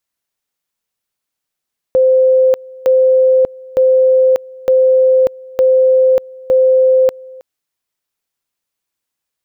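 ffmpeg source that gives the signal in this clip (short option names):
-f lavfi -i "aevalsrc='pow(10,(-6.5-24*gte(mod(t,0.91),0.59))/20)*sin(2*PI*519*t)':d=5.46:s=44100"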